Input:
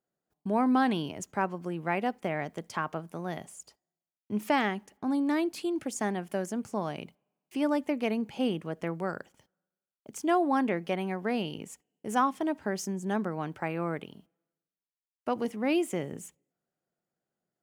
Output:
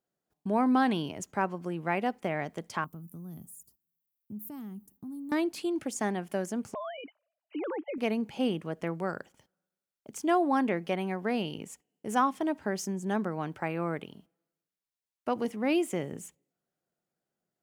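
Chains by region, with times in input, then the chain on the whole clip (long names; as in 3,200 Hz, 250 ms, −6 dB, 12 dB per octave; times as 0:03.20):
0:02.84–0:05.32: drawn EQ curve 220 Hz 0 dB, 640 Hz −23 dB, 1,200 Hz −17 dB, 1,900 Hz −28 dB, 6,000 Hz −13 dB, 10,000 Hz +2 dB, 14,000 Hz +15 dB + downward compressor 3 to 1, threshold −40 dBFS
0:06.74–0:07.98: three sine waves on the formant tracks + downward compressor 2 to 1, threshold −37 dBFS
whole clip: no processing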